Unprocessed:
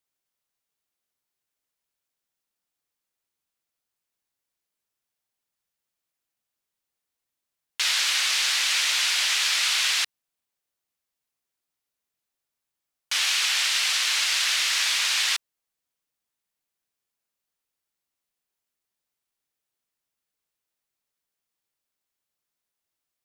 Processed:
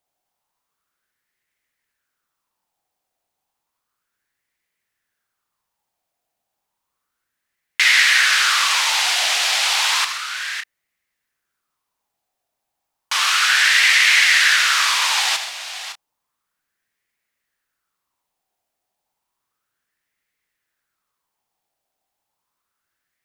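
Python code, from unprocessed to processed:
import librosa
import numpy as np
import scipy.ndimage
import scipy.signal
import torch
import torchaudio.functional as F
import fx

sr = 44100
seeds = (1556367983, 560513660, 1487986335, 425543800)

p1 = fx.low_shelf(x, sr, hz=360.0, db=4.0)
p2 = p1 + fx.echo_multitap(p1, sr, ms=(78, 131, 559, 589), db=(-11.0, -12.5, -12.0, -19.0), dry=0)
p3 = fx.bell_lfo(p2, sr, hz=0.32, low_hz=710.0, high_hz=2000.0, db=15)
y = F.gain(torch.from_numpy(p3), 3.0).numpy()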